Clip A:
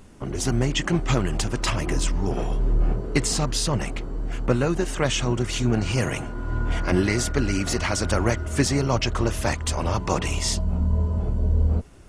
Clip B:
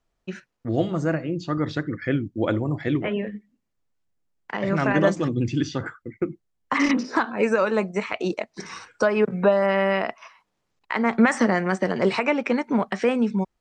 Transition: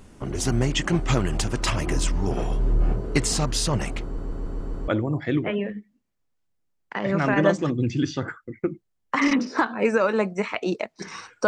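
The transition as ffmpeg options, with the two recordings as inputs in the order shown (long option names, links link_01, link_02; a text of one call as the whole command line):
ffmpeg -i cue0.wav -i cue1.wav -filter_complex "[0:a]apad=whole_dur=11.47,atrim=end=11.47,asplit=6[link_01][link_02][link_03][link_04][link_05][link_06];[link_01]atrim=end=4.182[link_07];[link_02]atrim=start=4.038:end=4.182[link_08];[link_03]atrim=start=4.038:end=4.182[link_09];[link_04]atrim=start=4.038:end=4.182[link_10];[link_05]atrim=start=4.038:end=4.182[link_11];[link_06]atrim=start=4.038:end=4.182[link_12];[1:a]atrim=start=2.458:end=9.05[link_13];[link_07][link_08]acrossfade=duration=0.004:curve1=hsin:curve2=hsin[link_14];[link_14][link_09]acrossfade=duration=0.004:curve1=hsin:curve2=hsin[link_15];[link_15][link_10]acrossfade=duration=0.004:curve1=hsin:curve2=hsin[link_16];[link_16][link_11]acrossfade=duration=0.004:curve1=hsin:curve2=hsin[link_17];[link_17][link_12]acrossfade=duration=0.004:curve1=hsin:curve2=hsin[link_18];[link_18][link_13]acrossfade=duration=0.004:curve1=hsin:curve2=hsin" out.wav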